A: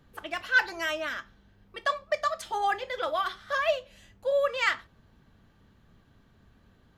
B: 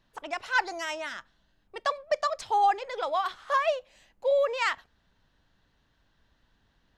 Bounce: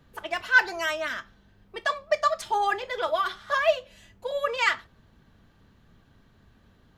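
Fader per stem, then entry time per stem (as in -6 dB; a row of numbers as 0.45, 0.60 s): +1.5, -2.5 dB; 0.00, 0.00 s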